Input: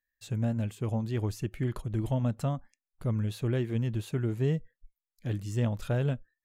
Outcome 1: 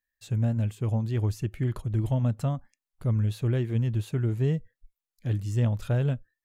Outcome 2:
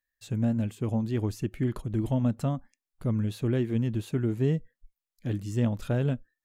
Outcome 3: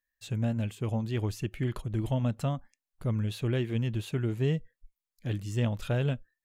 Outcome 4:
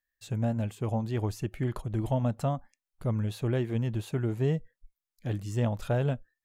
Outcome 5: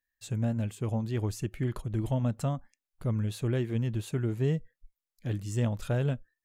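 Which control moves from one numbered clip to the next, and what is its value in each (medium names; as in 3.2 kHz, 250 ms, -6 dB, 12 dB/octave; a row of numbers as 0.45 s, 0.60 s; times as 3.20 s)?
dynamic bell, frequency: 100 Hz, 260 Hz, 2.9 kHz, 760 Hz, 8.1 kHz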